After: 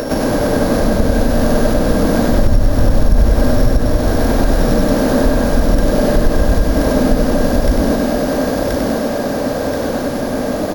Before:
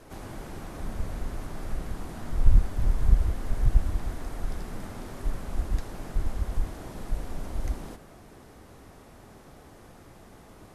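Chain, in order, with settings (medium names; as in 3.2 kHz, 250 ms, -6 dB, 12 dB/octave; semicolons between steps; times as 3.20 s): sorted samples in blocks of 8 samples; bass shelf 200 Hz -3 dB; band-stop 400 Hz, Q 12; small resonant body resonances 250/590/1600 Hz, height 12 dB, ringing for 45 ms; upward compressor, threshold -47 dBFS; peaking EQ 470 Hz +10 dB 0.4 oct; thinning echo 1029 ms, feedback 52%, high-pass 190 Hz, level -5 dB; compression 2:1, threshold -39 dBFS, peak gain reduction 15 dB; on a send: feedback delay 97 ms, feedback 59%, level -4 dB; on the sum: loudness maximiser +24.5 dB; trim -1 dB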